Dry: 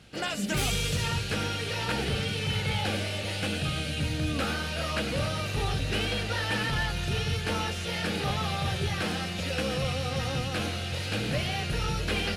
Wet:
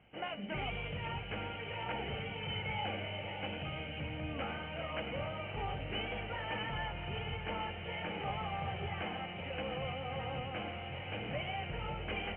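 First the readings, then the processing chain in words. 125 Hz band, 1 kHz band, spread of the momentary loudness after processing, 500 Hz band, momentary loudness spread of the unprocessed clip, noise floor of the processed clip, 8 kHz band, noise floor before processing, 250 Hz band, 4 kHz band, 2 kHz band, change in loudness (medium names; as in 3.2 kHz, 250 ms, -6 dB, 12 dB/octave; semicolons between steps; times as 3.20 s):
-12.0 dB, -5.0 dB, 3 LU, -8.0 dB, 3 LU, -44 dBFS, under -40 dB, -33 dBFS, -11.5 dB, -11.5 dB, -9.0 dB, -10.0 dB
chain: rippled Chebyshev low-pass 3.1 kHz, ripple 9 dB; on a send: echo whose repeats swap between lows and highs 546 ms, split 1.3 kHz, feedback 80%, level -12 dB; on the sum: trim -3.5 dB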